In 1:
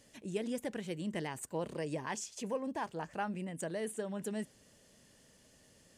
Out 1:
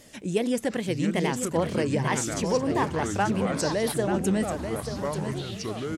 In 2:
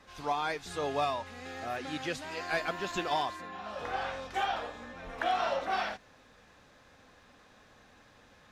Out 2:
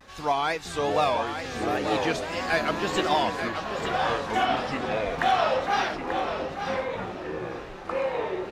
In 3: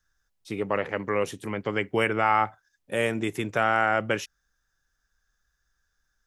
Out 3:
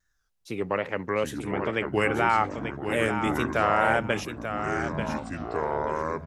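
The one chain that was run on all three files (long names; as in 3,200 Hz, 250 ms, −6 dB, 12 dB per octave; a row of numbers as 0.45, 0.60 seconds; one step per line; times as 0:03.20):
tape wow and flutter 110 cents
on a send: repeating echo 887 ms, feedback 22%, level −8 dB
on the sum: delay with pitch and tempo change per echo 518 ms, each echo −6 semitones, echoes 3, each echo −6 dB
loudness normalisation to −27 LKFS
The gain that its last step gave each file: +11.5, +6.5, −0.5 decibels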